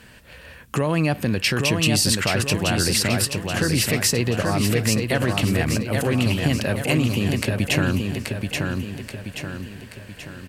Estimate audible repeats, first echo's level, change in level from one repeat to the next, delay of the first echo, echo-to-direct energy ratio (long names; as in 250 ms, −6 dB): 5, −4.0 dB, −6.5 dB, 830 ms, −3.0 dB